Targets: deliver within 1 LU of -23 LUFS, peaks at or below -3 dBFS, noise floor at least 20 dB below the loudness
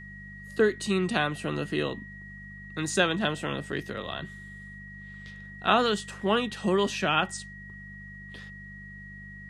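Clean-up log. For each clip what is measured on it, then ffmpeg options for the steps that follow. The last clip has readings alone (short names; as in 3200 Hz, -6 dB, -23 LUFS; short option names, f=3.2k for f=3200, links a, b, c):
hum 50 Hz; harmonics up to 200 Hz; hum level -44 dBFS; steady tone 1900 Hz; tone level -44 dBFS; loudness -28.0 LUFS; peak -8.5 dBFS; loudness target -23.0 LUFS
-> -af "bandreject=f=50:t=h:w=4,bandreject=f=100:t=h:w=4,bandreject=f=150:t=h:w=4,bandreject=f=200:t=h:w=4"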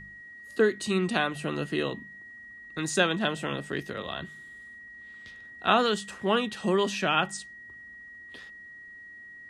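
hum none; steady tone 1900 Hz; tone level -44 dBFS
-> -af "bandreject=f=1.9k:w=30"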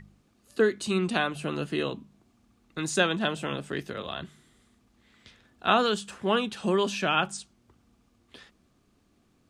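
steady tone none; loudness -28.0 LUFS; peak -8.5 dBFS; loudness target -23.0 LUFS
-> -af "volume=5dB"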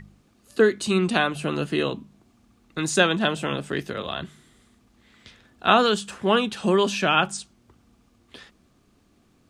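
loudness -23.0 LUFS; peak -3.5 dBFS; noise floor -62 dBFS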